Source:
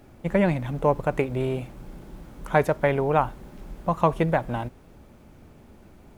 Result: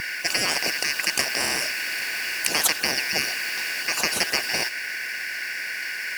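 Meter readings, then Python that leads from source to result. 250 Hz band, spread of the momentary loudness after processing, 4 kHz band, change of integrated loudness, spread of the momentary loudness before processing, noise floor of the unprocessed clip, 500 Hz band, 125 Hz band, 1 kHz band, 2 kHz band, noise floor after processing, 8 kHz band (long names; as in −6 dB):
−11.5 dB, 8 LU, +23.5 dB, +1.5 dB, 21 LU, −51 dBFS, −11.5 dB, −18.5 dB, −7.0 dB, +11.5 dB, −32 dBFS, can't be measured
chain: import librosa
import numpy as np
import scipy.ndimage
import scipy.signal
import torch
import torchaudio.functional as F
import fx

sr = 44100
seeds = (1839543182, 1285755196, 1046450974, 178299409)

y = fx.band_shuffle(x, sr, order='3142')
y = fx.highpass(y, sr, hz=430.0, slope=6)
y = fx.spectral_comp(y, sr, ratio=10.0)
y = F.gain(torch.from_numpy(y), 3.5).numpy()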